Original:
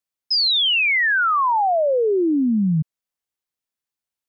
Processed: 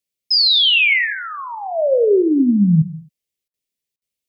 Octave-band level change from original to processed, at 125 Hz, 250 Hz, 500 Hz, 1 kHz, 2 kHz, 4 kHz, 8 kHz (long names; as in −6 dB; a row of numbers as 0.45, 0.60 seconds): +6.0 dB, +4.5 dB, +3.5 dB, −9.5 dB, +1.0 dB, +4.5 dB, can't be measured